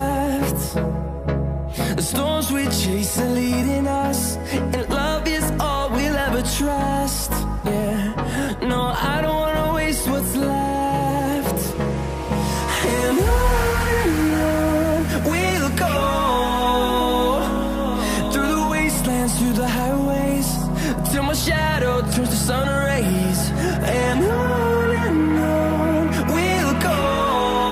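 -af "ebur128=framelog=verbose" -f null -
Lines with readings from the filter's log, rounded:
Integrated loudness:
  I:         -20.3 LUFS
  Threshold: -30.3 LUFS
Loudness range:
  LRA:         2.5 LU
  Threshold: -40.3 LUFS
  LRA low:   -21.6 LUFS
  LRA high:  -19.1 LUFS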